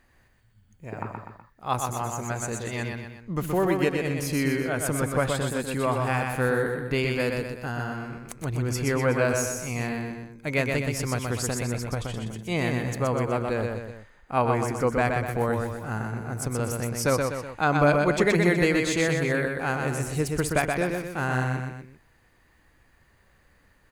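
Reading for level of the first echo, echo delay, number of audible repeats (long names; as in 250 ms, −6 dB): −4.0 dB, 124 ms, 3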